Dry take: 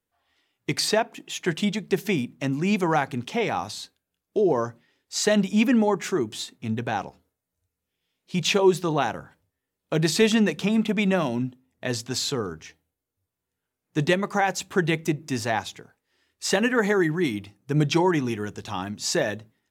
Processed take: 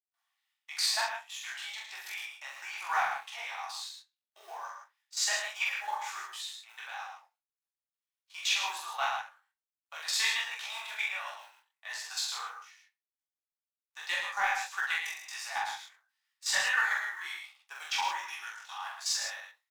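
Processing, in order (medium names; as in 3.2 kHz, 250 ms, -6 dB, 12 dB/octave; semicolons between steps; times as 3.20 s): companding laws mixed up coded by A; steep high-pass 850 Hz 36 dB/octave; level held to a coarse grid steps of 14 dB; saturation -16 dBFS, distortion -24 dB; doubling 44 ms -2 dB; delay 109 ms -6.5 dB; on a send at -3 dB: reverberation RT60 0.25 s, pre-delay 3 ms; on the sum: detune thickener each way 49 cents; trim +1.5 dB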